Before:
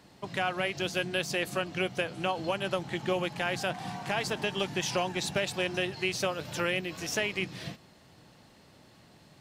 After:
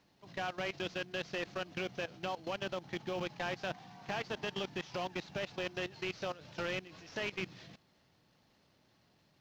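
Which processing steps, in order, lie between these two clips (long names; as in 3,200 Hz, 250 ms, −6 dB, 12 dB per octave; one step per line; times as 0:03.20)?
variable-slope delta modulation 32 kbit/s
output level in coarse steps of 17 dB
log-companded quantiser 8 bits
level −2.5 dB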